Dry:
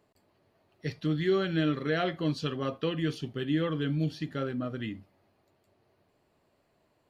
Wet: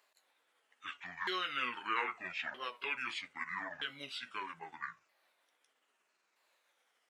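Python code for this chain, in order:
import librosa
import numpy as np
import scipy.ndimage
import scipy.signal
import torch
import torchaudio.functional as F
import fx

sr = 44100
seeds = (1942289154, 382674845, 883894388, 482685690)

y = fx.pitch_ramps(x, sr, semitones=-11.5, every_ms=1272)
y = scipy.signal.sosfilt(scipy.signal.butter(2, 1300.0, 'highpass', fs=sr, output='sos'), y)
y = y * 10.0 ** (5.0 / 20.0)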